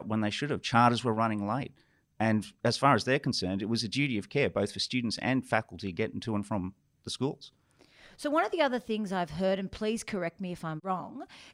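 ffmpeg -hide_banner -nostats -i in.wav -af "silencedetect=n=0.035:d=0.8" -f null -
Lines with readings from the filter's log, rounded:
silence_start: 7.31
silence_end: 8.25 | silence_duration: 0.94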